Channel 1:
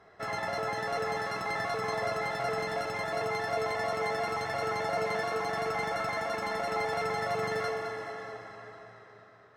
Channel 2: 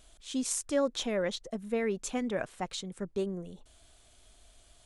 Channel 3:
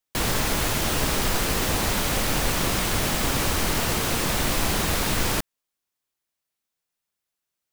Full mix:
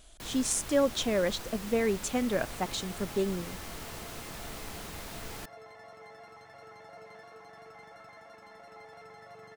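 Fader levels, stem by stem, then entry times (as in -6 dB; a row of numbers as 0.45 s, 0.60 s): -19.0 dB, +3.0 dB, -18.5 dB; 2.00 s, 0.00 s, 0.05 s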